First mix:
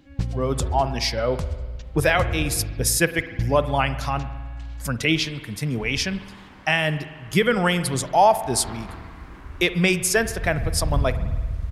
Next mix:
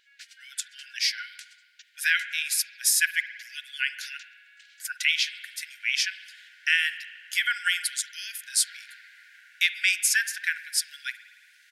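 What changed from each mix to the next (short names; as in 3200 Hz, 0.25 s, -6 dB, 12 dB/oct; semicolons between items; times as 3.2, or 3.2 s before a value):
master: add brick-wall FIR high-pass 1400 Hz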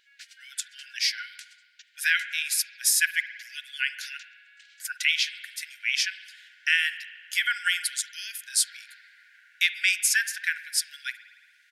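second sound: add high shelf 2200 Hz -8 dB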